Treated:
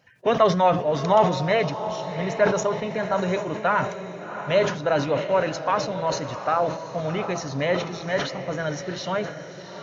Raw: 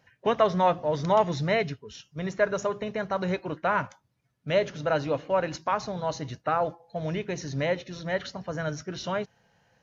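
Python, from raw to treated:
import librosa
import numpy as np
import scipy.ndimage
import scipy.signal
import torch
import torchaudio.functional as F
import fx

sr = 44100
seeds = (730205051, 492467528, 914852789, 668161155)

y = fx.spec_quant(x, sr, step_db=15)
y = fx.low_shelf(y, sr, hz=85.0, db=-9.0)
y = fx.echo_diffused(y, sr, ms=716, feedback_pct=52, wet_db=-10.5)
y = fx.sustainer(y, sr, db_per_s=87.0)
y = y * 10.0 ** (4.0 / 20.0)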